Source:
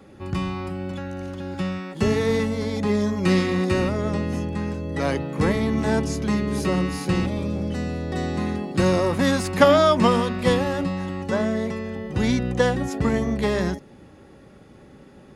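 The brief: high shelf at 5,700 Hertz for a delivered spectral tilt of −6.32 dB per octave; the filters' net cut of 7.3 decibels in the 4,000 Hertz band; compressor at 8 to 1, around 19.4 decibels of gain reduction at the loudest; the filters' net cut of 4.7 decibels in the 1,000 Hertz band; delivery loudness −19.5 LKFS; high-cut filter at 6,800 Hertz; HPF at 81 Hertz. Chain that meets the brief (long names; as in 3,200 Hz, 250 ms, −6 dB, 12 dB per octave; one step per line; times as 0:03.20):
high-pass filter 81 Hz
low-pass filter 6,800 Hz
parametric band 1,000 Hz −5.5 dB
parametric band 4,000 Hz −7 dB
high-shelf EQ 5,700 Hz −5 dB
downward compressor 8 to 1, threshold −34 dBFS
level +18 dB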